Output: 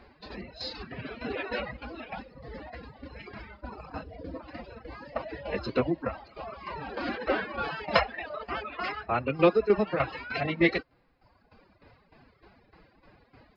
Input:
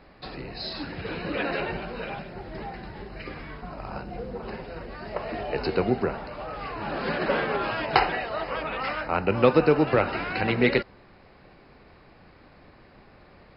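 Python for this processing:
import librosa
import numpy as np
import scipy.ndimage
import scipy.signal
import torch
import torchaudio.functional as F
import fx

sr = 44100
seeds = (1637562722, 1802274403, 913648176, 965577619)

y = fx.pitch_keep_formants(x, sr, semitones=5.5)
y = fx.tremolo_shape(y, sr, shape='saw_down', hz=3.3, depth_pct=60)
y = fx.dereverb_blind(y, sr, rt60_s=1.3)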